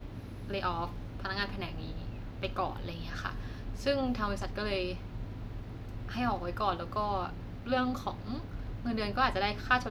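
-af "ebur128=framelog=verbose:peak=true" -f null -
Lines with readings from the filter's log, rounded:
Integrated loudness:
  I:         -34.9 LUFS
  Threshold: -44.9 LUFS
Loudness range:
  LRA:         3.9 LU
  Threshold: -55.3 LUFS
  LRA low:   -37.3 LUFS
  LRA high:  -33.4 LUFS
True peak:
  Peak:      -12.8 dBFS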